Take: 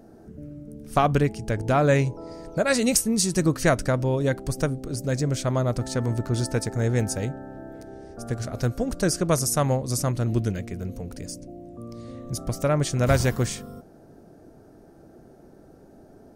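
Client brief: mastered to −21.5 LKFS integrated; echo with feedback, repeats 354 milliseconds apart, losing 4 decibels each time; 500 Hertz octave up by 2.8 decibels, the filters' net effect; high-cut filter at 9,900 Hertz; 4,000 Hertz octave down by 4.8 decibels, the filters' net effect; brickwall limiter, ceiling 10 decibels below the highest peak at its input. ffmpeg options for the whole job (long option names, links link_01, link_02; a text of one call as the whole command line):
ffmpeg -i in.wav -af "lowpass=9900,equalizer=frequency=500:width_type=o:gain=3.5,equalizer=frequency=4000:width_type=o:gain=-6.5,alimiter=limit=-15.5dB:level=0:latency=1,aecho=1:1:354|708|1062|1416|1770|2124|2478|2832|3186:0.631|0.398|0.25|0.158|0.0994|0.0626|0.0394|0.0249|0.0157,volume=4dB" out.wav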